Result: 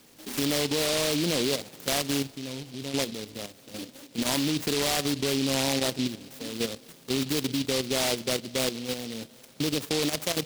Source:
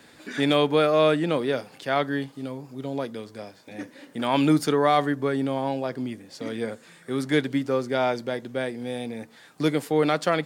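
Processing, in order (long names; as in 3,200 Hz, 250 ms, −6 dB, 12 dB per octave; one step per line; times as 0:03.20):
brickwall limiter −19 dBFS, peak gain reduction 9.5 dB
output level in coarse steps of 10 dB
on a send at −21.5 dB: convolution reverb RT60 4.9 s, pre-delay 23 ms
on the sum: short delay modulated by noise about 3,600 Hz, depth 0.22 ms
level +4 dB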